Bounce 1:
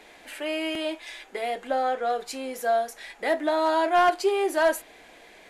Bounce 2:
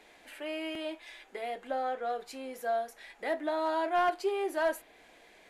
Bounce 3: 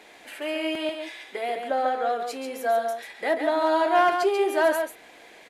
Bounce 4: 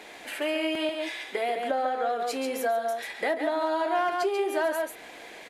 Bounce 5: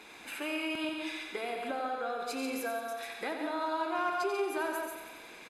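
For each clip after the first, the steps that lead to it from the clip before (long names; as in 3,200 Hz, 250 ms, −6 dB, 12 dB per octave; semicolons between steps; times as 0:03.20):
dynamic equaliser 7,200 Hz, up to −5 dB, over −50 dBFS, Q 0.7; level −7.5 dB
high-pass filter 140 Hz 6 dB per octave; single-tap delay 139 ms −6 dB; level +8 dB
downward compressor 4 to 1, threshold −30 dBFS, peak gain reduction 12 dB; level +4.5 dB
comb filter 0.8 ms, depth 52%; repeating echo 90 ms, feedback 60%, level −7.5 dB; level −6 dB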